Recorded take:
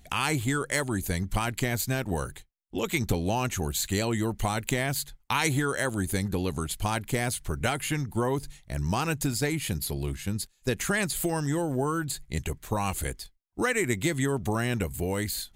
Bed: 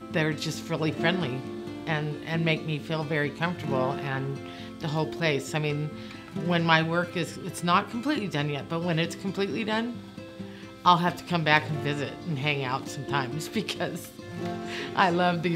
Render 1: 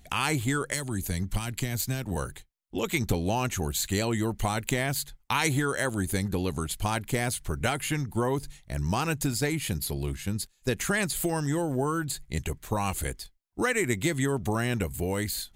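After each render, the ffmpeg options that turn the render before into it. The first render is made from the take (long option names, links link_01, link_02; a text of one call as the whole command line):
ffmpeg -i in.wav -filter_complex "[0:a]asettb=1/sr,asplit=3[link_01][link_02][link_03];[link_01]atrim=end=0.734[link_04];[link_02]atrim=start=0.73:end=2.16,asetpts=PTS-STARTPTS,afade=type=in:duration=0.004:curve=qsin,afade=type=out:start_time=1.426:duration=0.004:curve=qsin,acrossover=split=240|3000[link_05][link_06][link_07];[link_06]acompressor=threshold=-36dB:ratio=4:attack=3.2:release=140:knee=2.83:detection=peak[link_08];[link_05][link_08][link_07]amix=inputs=3:normalize=0[link_09];[link_03]atrim=start=2.156[link_10];[link_04][link_09]acrossfade=duration=0.004:curve1=hsin:curve2=qsin[link_11];[link_11][link_10]acrossfade=duration=0.004:curve1=qsin:curve2=hsin" out.wav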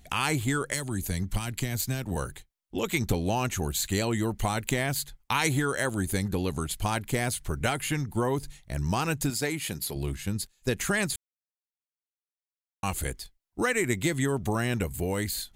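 ffmpeg -i in.wav -filter_complex "[0:a]asettb=1/sr,asplit=3[link_01][link_02][link_03];[link_01]atrim=end=9.304[link_04];[link_02]atrim=start=9.3:end=9.96,asetpts=PTS-STARTPTS,afade=type=in:duration=0.004:curve=qsin,afade=type=out:start_time=0.656:duration=0.004:curve=qsin,highpass=frequency=250:poles=1[link_05];[link_03]atrim=start=9.956[link_06];[link_04][link_05]acrossfade=duration=0.004:curve1=hsin:curve2=qsin[link_07];[link_07][link_06]acrossfade=duration=0.004:curve1=qsin:curve2=hsin,asplit=3[link_08][link_09][link_10];[link_08]atrim=end=11.16,asetpts=PTS-STARTPTS,afade=type=out:start_time=11.156:duration=0.004:curve=hsin[link_11];[link_09]atrim=start=11.16:end=12.83,asetpts=PTS-STARTPTS,volume=0[link_12];[link_10]atrim=start=12.83,asetpts=PTS-STARTPTS,afade=type=in:duration=0.004:curve=hsin[link_13];[link_11][link_12][link_13]concat=n=3:v=0:a=1" out.wav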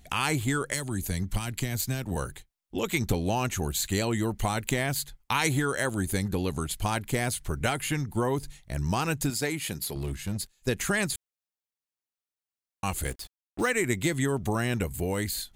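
ffmpeg -i in.wav -filter_complex "[0:a]asettb=1/sr,asplit=3[link_01][link_02][link_03];[link_01]atrim=end=9.834[link_04];[link_02]atrim=start=9.83:end=10.56,asetpts=PTS-STARTPTS,afade=type=in:duration=0.004:curve=qsin,afade=type=out:start_time=0.726:duration=0.004:curve=qsin,volume=25.5dB,asoftclip=hard,volume=-25.5dB[link_05];[link_03]atrim=start=10.556[link_06];[link_04][link_05]acrossfade=duration=0.004:curve1=hsin:curve2=qsin[link_07];[link_07][link_06]acrossfade=duration=0.004:curve1=qsin:curve2=hsin,asettb=1/sr,asplit=3[link_08][link_09][link_10];[link_08]atrim=end=13.054[link_11];[link_09]atrim=start=13.05:end=13.7,asetpts=PTS-STARTPTS,afade=type=in:duration=0.004:curve=qsin,afade=type=out:start_time=0.646:duration=0.004:curve=qsin,acrusher=bits=6:mix=0:aa=0.5[link_12];[link_10]atrim=start=13.696[link_13];[link_11][link_12]acrossfade=duration=0.004:curve1=hsin:curve2=qsin[link_14];[link_14][link_13]acrossfade=duration=0.004:curve1=qsin:curve2=hsin" out.wav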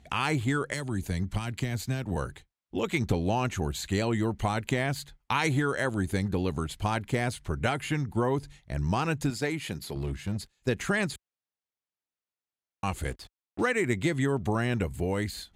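ffmpeg -i in.wav -af "highpass=43,aemphasis=mode=reproduction:type=50fm" out.wav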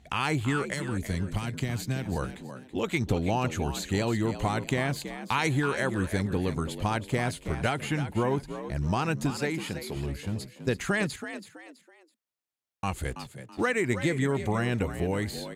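ffmpeg -i in.wav -filter_complex "[0:a]asplit=4[link_01][link_02][link_03][link_04];[link_02]adelay=328,afreqshift=59,volume=-11dB[link_05];[link_03]adelay=656,afreqshift=118,volume=-20.9dB[link_06];[link_04]adelay=984,afreqshift=177,volume=-30.8dB[link_07];[link_01][link_05][link_06][link_07]amix=inputs=4:normalize=0" out.wav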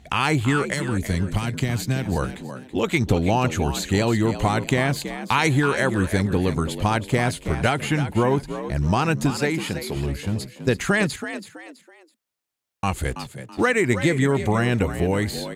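ffmpeg -i in.wav -af "volume=7dB" out.wav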